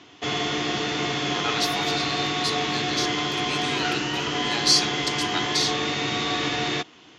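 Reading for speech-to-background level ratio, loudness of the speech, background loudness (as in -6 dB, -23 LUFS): -2.0 dB, -27.0 LUFS, -25.0 LUFS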